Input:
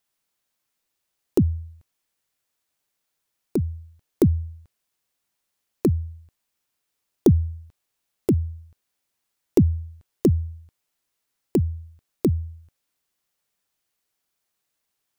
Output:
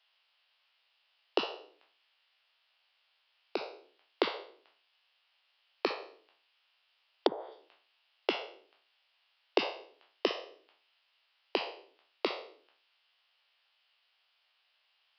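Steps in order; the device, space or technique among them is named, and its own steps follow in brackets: spectral trails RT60 0.49 s; 5.91–7.52 treble ducked by the level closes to 610 Hz, closed at -11.5 dBFS; musical greeting card (downsampling 11025 Hz; HPF 620 Hz 24 dB/oct; bell 2900 Hz +10 dB 0.5 oct); gain +5.5 dB

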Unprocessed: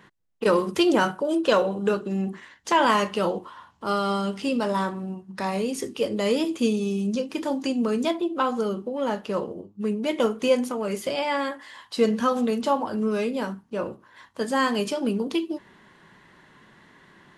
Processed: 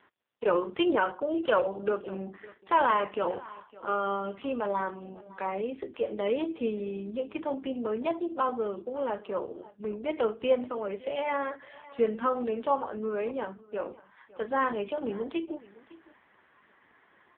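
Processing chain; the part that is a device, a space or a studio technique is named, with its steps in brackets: satellite phone (BPF 340–3100 Hz; echo 0.559 s -20 dB; gain -2.5 dB; AMR-NB 5.15 kbps 8000 Hz)

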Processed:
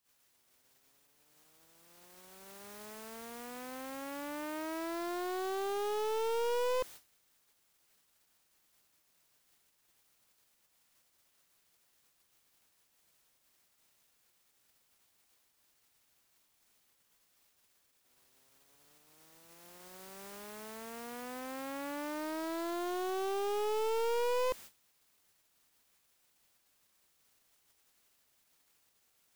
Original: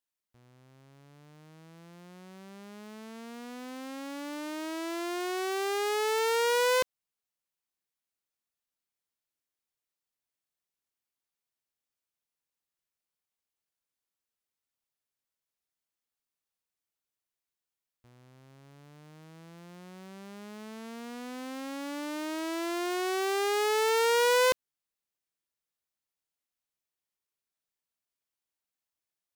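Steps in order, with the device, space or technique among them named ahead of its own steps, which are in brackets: aircraft radio (BPF 350–2300 Hz; hard clip -30 dBFS, distortion -5 dB; white noise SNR 11 dB; gate -49 dBFS, range -30 dB)

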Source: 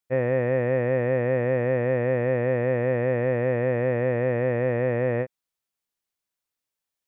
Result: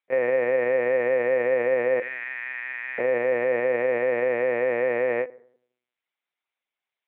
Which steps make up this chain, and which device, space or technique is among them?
2–2.99 HPF 1400 Hz 24 dB/oct; FDN reverb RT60 0.63 s, low-frequency decay 1.35×, high-frequency decay 0.5×, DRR 15.5 dB; talking toy (LPC vocoder at 8 kHz pitch kept; HPF 400 Hz 12 dB/oct; bell 2200 Hz +7.5 dB 0.29 oct); gain +3 dB

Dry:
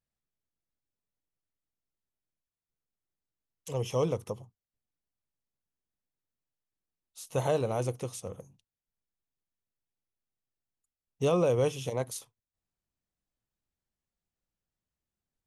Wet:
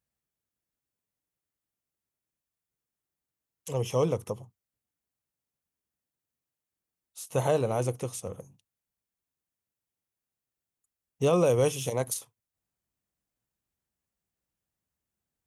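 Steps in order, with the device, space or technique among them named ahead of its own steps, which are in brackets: HPF 51 Hz; 11.33–12.14 high shelf 4800 Hz +8 dB; exciter from parts (in parallel at -6 dB: HPF 2500 Hz 12 dB/oct + soft clip -34.5 dBFS, distortion -12 dB + HPF 4800 Hz 12 dB/oct); on the sum: gain +2.5 dB

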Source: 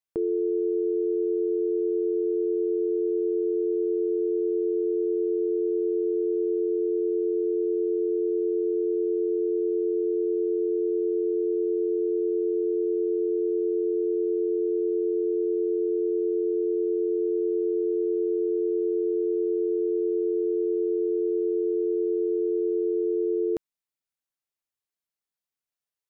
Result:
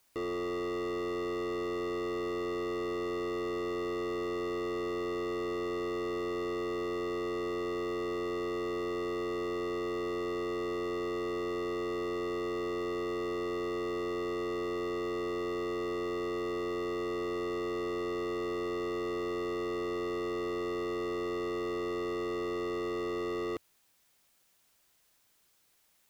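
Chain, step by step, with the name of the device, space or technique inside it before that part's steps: open-reel tape (soft clip -39 dBFS, distortion -6 dB; bell 84 Hz +2.5 dB 0.77 oct; white noise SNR 35 dB); gain +5.5 dB

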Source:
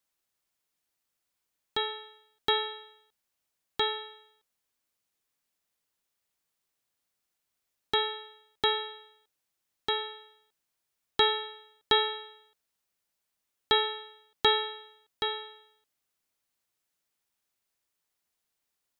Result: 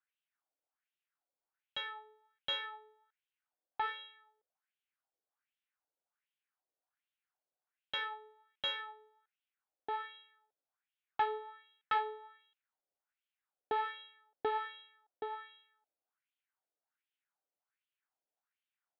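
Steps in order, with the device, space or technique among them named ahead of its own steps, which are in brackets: wah-wah guitar rig (wah 1.3 Hz 510–3100 Hz, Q 3.1; tube stage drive 29 dB, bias 0.6; speaker cabinet 110–3600 Hz, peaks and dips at 290 Hz +6 dB, 770 Hz +5 dB, 1500 Hz +6 dB); gain +2 dB

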